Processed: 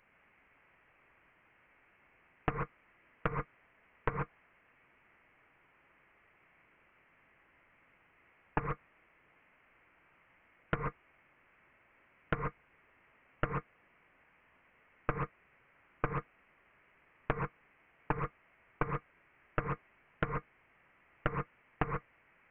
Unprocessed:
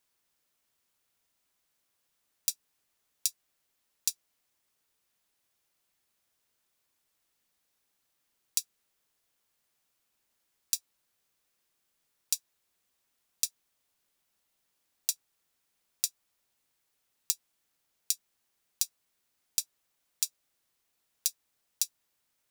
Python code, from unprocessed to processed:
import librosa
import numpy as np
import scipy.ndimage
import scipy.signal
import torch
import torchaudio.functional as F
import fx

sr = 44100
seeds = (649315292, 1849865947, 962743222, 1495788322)

y = fx.highpass_res(x, sr, hz=1600.0, q=2.0)
y = fx.rev_gated(y, sr, seeds[0], gate_ms=160, shape='rising', drr_db=2.0)
y = fx.freq_invert(y, sr, carrier_hz=3800)
y = fx.doppler_dist(y, sr, depth_ms=0.66)
y = y * 10.0 ** (14.0 / 20.0)